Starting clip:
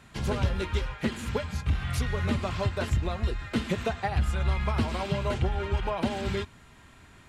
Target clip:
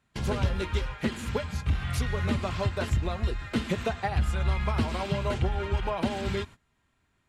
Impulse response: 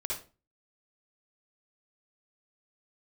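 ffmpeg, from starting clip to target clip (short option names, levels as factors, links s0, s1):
-af "agate=range=0.112:threshold=0.00708:ratio=16:detection=peak"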